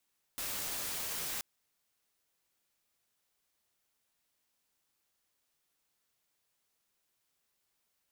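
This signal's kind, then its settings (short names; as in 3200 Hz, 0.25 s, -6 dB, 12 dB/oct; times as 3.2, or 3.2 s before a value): noise white, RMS -38 dBFS 1.03 s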